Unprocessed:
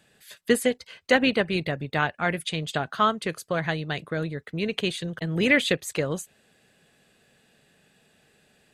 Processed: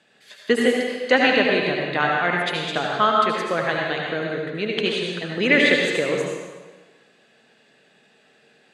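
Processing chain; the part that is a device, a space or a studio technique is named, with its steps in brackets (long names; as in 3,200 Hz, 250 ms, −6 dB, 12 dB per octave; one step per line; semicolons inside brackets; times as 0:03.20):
supermarket ceiling speaker (band-pass filter 230–5,400 Hz; convolution reverb RT60 1.4 s, pre-delay 70 ms, DRR −1.5 dB)
level +2.5 dB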